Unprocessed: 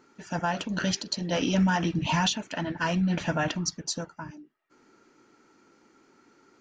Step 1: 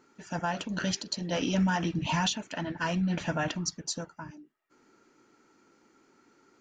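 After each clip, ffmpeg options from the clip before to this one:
ffmpeg -i in.wav -af "equalizer=frequency=7200:width_type=o:width=0.24:gain=3,volume=-3dB" out.wav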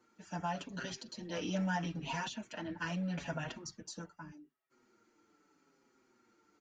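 ffmpeg -i in.wav -filter_complex "[0:a]acrossover=split=170|800|1600[link_01][link_02][link_03][link_04];[link_01]aeval=exprs='0.0133*(abs(mod(val(0)/0.0133+3,4)-2)-1)':channel_layout=same[link_05];[link_04]alimiter=level_in=3.5dB:limit=-24dB:level=0:latency=1:release=46,volume=-3.5dB[link_06];[link_05][link_02][link_03][link_06]amix=inputs=4:normalize=0,asplit=2[link_07][link_08];[link_08]adelay=6,afreqshift=-0.8[link_09];[link_07][link_09]amix=inputs=2:normalize=1,volume=-4.5dB" out.wav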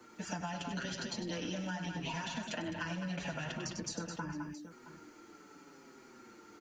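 ffmpeg -i in.wav -filter_complex "[0:a]acrossover=split=110|270|1700[link_01][link_02][link_03][link_04];[link_01]acompressor=threshold=-60dB:ratio=4[link_05];[link_02]acompressor=threshold=-50dB:ratio=4[link_06];[link_03]acompressor=threshold=-48dB:ratio=4[link_07];[link_04]acompressor=threshold=-49dB:ratio=4[link_08];[link_05][link_06][link_07][link_08]amix=inputs=4:normalize=0,aecho=1:1:97|208|667:0.355|0.398|0.106,acompressor=threshold=-50dB:ratio=6,volume=13.5dB" out.wav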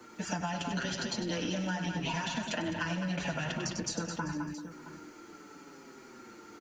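ffmpeg -i in.wav -af "aecho=1:1:389:0.141,volume=5dB" out.wav

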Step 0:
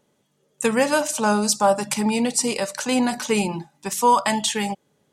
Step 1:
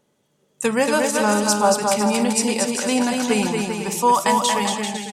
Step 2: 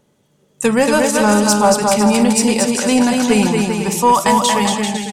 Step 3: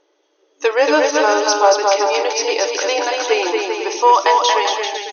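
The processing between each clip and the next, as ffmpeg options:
ffmpeg -i in.wav -af "aecho=1:1:230|391|503.7|582.6|637.8:0.631|0.398|0.251|0.158|0.1" out.wav
ffmpeg -i in.wav -af "acontrast=47,lowshelf=frequency=170:gain=8.5,volume=-1dB" out.wav
ffmpeg -i in.wav -af "afftfilt=real='re*between(b*sr/4096,290,6500)':imag='im*between(b*sr/4096,290,6500)':win_size=4096:overlap=0.75,volume=1dB" out.wav

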